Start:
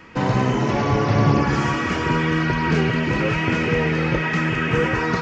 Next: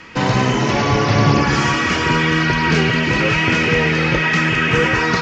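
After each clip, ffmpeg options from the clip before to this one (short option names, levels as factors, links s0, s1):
-af "lowpass=6600,highshelf=f=2300:g=11.5,volume=1.33"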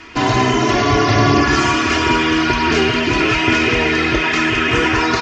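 -af "aecho=1:1:2.9:0.87"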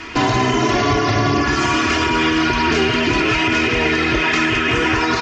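-af "alimiter=limit=0.211:level=0:latency=1:release=281,volume=2"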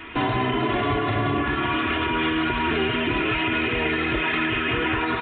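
-af "aresample=8000,aresample=44100,volume=0.473"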